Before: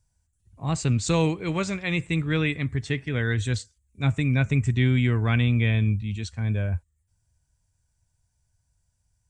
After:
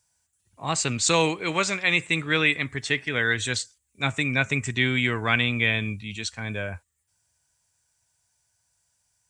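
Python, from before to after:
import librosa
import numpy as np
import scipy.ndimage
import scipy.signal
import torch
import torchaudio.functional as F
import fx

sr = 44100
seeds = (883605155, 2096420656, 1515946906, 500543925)

y = fx.highpass(x, sr, hz=910.0, slope=6)
y = y * librosa.db_to_amplitude(8.5)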